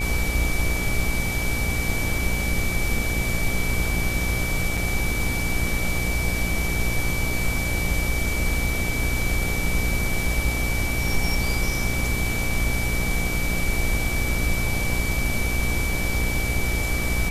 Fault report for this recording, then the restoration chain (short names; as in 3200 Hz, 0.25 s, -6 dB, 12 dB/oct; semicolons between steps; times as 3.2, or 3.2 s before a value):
buzz 60 Hz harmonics 14 -28 dBFS
tone 2300 Hz -28 dBFS
4.77 gap 4.5 ms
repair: de-hum 60 Hz, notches 14; notch 2300 Hz, Q 30; interpolate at 4.77, 4.5 ms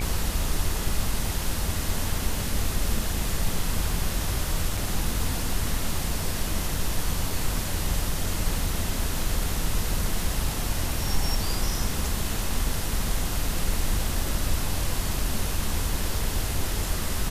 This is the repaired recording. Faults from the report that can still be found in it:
none